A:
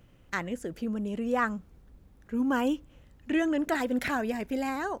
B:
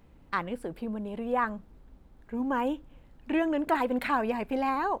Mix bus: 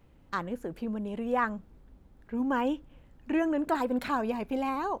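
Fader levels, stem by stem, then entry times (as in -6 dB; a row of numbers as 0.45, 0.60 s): -10.5, -3.0 dB; 0.00, 0.00 s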